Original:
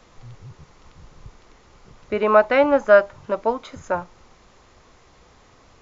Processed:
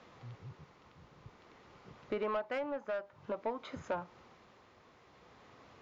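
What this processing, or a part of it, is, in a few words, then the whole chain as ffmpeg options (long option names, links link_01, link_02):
AM radio: -af "highpass=110,lowpass=3900,acompressor=threshold=-27dB:ratio=4,asoftclip=type=tanh:threshold=-22.5dB,tremolo=f=0.52:d=0.36,volume=-4dB"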